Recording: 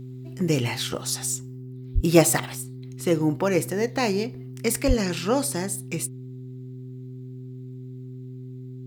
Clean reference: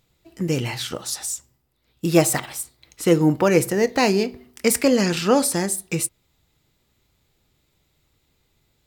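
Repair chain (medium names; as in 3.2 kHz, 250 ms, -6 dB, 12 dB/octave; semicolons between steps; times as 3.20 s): de-hum 127.6 Hz, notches 3; 1.94–2.06 s: high-pass 140 Hz 24 dB/octave; 2.55 s: gain correction +5.5 dB; 4.87–4.99 s: high-pass 140 Hz 24 dB/octave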